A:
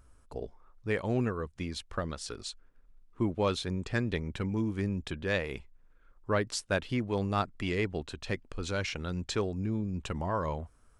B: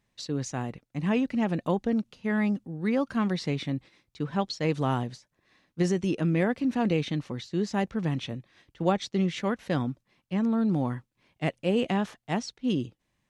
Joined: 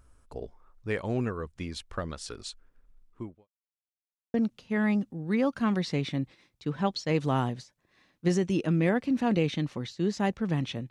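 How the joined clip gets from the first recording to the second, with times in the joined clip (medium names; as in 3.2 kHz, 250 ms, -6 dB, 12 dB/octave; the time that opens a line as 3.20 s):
A
3.06–3.48 s: fade out quadratic
3.48–4.34 s: mute
4.34 s: go over to B from 1.88 s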